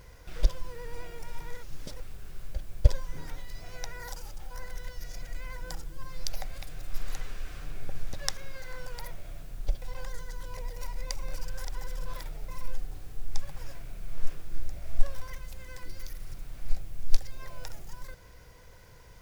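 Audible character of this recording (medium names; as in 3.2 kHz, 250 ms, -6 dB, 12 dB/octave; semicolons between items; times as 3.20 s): noise floor -51 dBFS; spectral tilt -4.0 dB/octave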